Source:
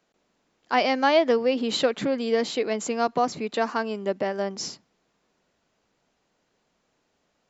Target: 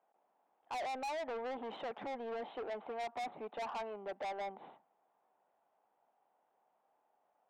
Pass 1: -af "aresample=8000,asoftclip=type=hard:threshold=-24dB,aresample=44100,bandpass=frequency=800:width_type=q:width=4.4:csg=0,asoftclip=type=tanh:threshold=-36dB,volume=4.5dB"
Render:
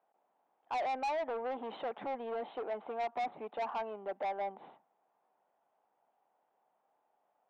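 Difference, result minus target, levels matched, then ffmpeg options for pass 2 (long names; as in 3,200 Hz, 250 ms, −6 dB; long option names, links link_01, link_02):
soft clipping: distortion −4 dB
-af "aresample=8000,asoftclip=type=hard:threshold=-24dB,aresample=44100,bandpass=frequency=800:width_type=q:width=4.4:csg=0,asoftclip=type=tanh:threshold=-42dB,volume=4.5dB"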